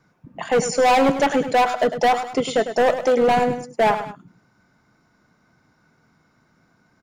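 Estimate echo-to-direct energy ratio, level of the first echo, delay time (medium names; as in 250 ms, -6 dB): -10.0 dB, -10.5 dB, 102 ms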